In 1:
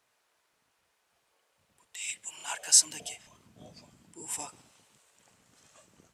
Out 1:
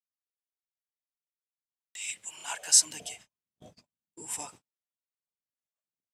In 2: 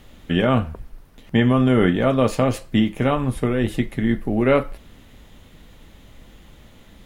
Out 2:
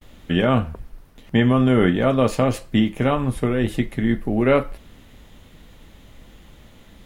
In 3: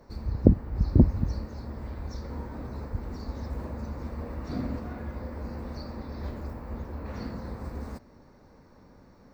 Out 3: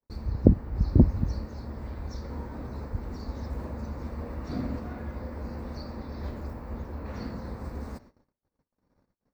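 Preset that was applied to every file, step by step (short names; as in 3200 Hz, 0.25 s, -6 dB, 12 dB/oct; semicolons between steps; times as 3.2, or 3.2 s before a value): gate -50 dBFS, range -43 dB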